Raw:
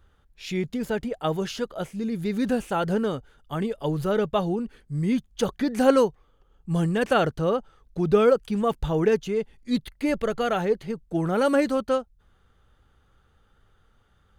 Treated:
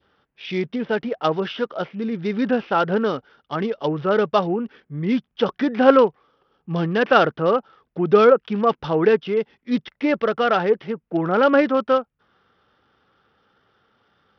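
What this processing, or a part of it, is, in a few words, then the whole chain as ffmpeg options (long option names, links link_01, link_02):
Bluetooth headset: -af "adynamicequalizer=threshold=0.0112:dfrequency=1300:dqfactor=1.8:tfrequency=1300:tqfactor=1.8:attack=5:release=100:ratio=0.375:range=2:mode=boostabove:tftype=bell,highpass=210,aresample=8000,aresample=44100,volume=5dB" -ar 44100 -c:a sbc -b:a 64k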